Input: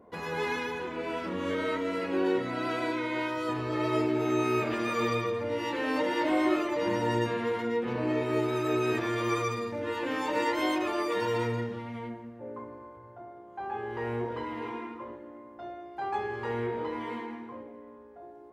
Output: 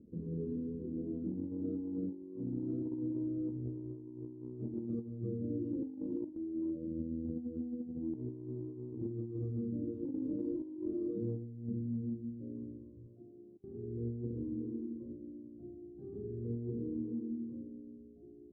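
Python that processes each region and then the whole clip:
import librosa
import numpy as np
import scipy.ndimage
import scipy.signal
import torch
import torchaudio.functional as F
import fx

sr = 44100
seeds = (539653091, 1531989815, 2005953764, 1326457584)

y = fx.chain(x, sr, fx.over_compress(threshold_db=-32.0, ratio=-1.0),
    fx.robotise(hz=81.2), at=(6.35, 8.15))
y = fx.chain(y, sr, fx.highpass(hz=330.0, slope=6),
    fx.over_compress(threshold_db=-45.0, ratio=-0.5), at=(13.06, 13.64))
y = scipy.signal.sosfilt(scipy.signal.cheby2(4, 50, 790.0, 'lowpass', fs=sr, output='sos'), y)
y = fx.hum_notches(y, sr, base_hz=50, count=2)
y = fx.over_compress(y, sr, threshold_db=-39.0, ratio=-0.5)
y = F.gain(torch.from_numpy(y), 1.5).numpy()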